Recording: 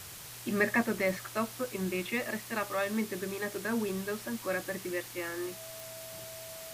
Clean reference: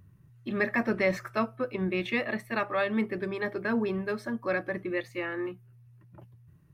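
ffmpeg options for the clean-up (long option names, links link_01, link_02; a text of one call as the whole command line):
ffmpeg -i in.wav -af "adeclick=threshold=4,bandreject=frequency=650:width=30,afwtdn=0.0056,asetnsamples=nb_out_samples=441:pad=0,asendcmd='0.83 volume volume 4dB',volume=0dB" out.wav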